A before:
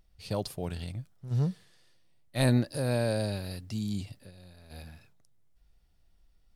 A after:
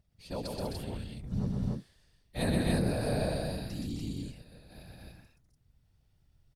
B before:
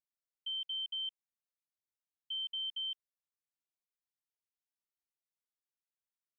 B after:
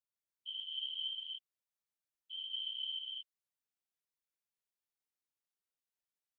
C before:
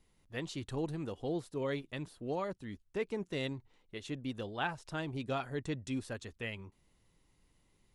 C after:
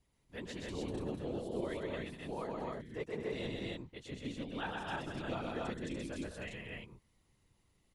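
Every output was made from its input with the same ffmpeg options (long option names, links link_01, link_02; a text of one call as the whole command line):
ffmpeg -i in.wav -af "afftfilt=real='hypot(re,im)*cos(2*PI*random(0))':imag='hypot(re,im)*sin(2*PI*random(1))':win_size=512:overlap=0.75,aecho=1:1:125.4|198.3|259.5|291.5:0.708|0.355|0.562|0.794" out.wav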